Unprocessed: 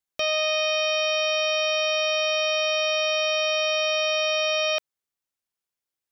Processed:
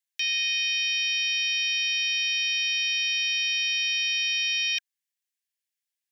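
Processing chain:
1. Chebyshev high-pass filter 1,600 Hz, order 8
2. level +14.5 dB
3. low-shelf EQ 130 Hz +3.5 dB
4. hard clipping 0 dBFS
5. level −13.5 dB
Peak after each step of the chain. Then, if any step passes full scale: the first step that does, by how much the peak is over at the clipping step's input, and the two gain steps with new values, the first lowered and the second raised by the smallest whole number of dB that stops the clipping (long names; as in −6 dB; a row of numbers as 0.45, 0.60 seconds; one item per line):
−18.5, −4.0, −4.0, −4.0, −17.5 dBFS
no step passes full scale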